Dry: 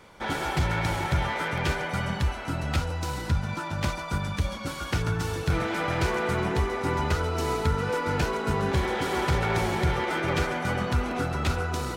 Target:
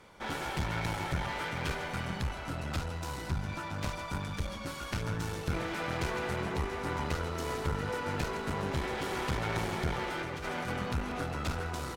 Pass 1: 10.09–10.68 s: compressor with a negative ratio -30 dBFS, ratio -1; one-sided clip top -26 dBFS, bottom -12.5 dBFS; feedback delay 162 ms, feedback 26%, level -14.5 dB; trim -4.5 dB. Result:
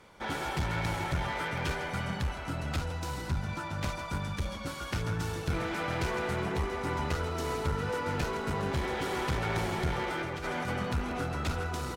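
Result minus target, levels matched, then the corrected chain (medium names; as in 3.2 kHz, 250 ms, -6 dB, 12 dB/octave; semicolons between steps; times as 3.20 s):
one-sided clip: distortion -5 dB
10.09–10.68 s: compressor with a negative ratio -30 dBFS, ratio -1; one-sided clip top -35.5 dBFS, bottom -12.5 dBFS; feedback delay 162 ms, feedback 26%, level -14.5 dB; trim -4.5 dB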